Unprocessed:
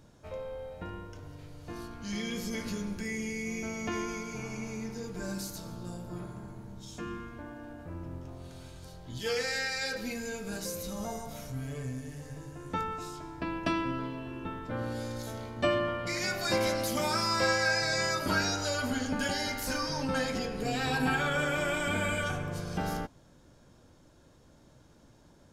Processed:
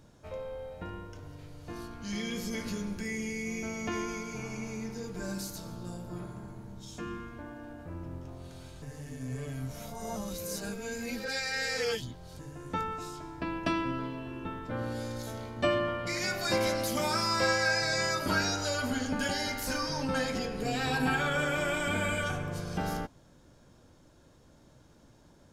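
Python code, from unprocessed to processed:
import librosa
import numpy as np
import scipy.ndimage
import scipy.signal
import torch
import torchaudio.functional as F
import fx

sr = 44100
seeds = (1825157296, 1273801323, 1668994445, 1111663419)

y = fx.edit(x, sr, fx.reverse_span(start_s=8.82, length_s=3.57), tone=tone)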